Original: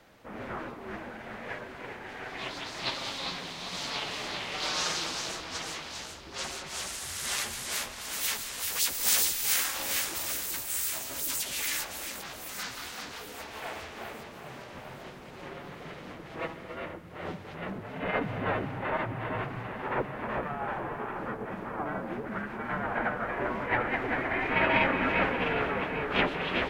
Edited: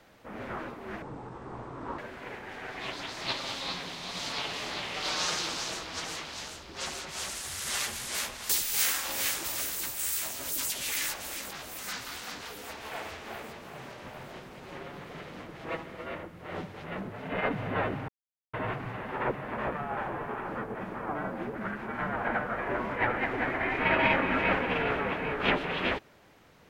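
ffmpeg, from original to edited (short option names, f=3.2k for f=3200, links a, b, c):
-filter_complex "[0:a]asplit=6[a][b][c][d][e][f];[a]atrim=end=1.024[g];[b]atrim=start=1.02:end=1.56,asetpts=PTS-STARTPTS,asetrate=24696,aresample=44100[h];[c]atrim=start=1.556:end=8.072[i];[d]atrim=start=9.198:end=18.79,asetpts=PTS-STARTPTS,afade=t=out:st=9.588:d=0.004:c=hsin[j];[e]atrim=start=18.79:end=19.24,asetpts=PTS-STARTPTS,volume=0[k];[f]atrim=start=19.24,asetpts=PTS-STARTPTS,afade=t=in:d=0.004:c=hsin[l];[g][h]acrossfade=d=0.004:c1=hsin:c2=hsin[m];[m][i]acrossfade=d=0.004:c1=hsin:c2=hsin[n];[j][k][l]concat=n=3:v=0:a=1[o];[n][o]acrossfade=d=0.004:c1=hsin:c2=hsin"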